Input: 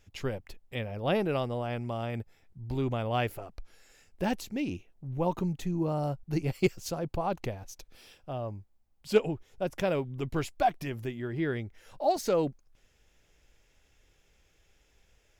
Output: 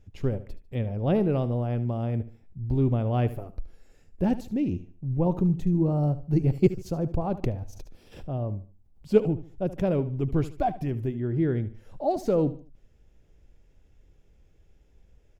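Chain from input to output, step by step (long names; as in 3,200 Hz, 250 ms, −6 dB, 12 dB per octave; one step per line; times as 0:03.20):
tilt shelving filter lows +9.5 dB, about 660 Hz
on a send: repeating echo 74 ms, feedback 32%, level −15 dB
0:07.43–0:09.10: on the sum: background raised ahead of every attack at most 97 dB per second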